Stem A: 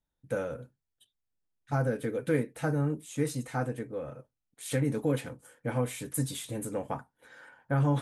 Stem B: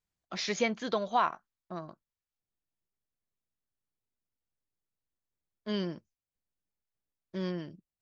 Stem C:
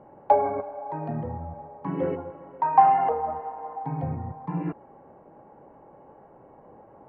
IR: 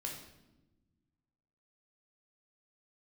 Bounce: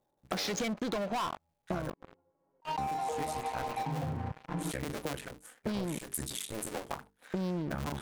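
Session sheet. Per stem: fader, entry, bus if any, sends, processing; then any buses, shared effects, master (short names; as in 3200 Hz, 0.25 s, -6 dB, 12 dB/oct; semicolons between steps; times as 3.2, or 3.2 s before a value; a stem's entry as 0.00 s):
+2.0 dB, 0.00 s, muted 1.9–2.78, no bus, no send, cycle switcher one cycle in 2, muted; tilt shelf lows -4 dB, about 910 Hz; notches 50/100/150/200/250/300/350/400/450 Hz
+2.0 dB, 0.00 s, bus A, no send, Wiener smoothing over 25 samples
2.95 s -18 dB -> 3.59 s -9.5 dB, 0.00 s, bus A, no send, attack slew limiter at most 150 dB/s; auto duck -17 dB, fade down 1.75 s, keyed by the second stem
bus A: 0.0 dB, sample leveller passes 5; compressor, threshold -25 dBFS, peak gain reduction 8.5 dB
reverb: off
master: compressor, threshold -32 dBFS, peak gain reduction 10.5 dB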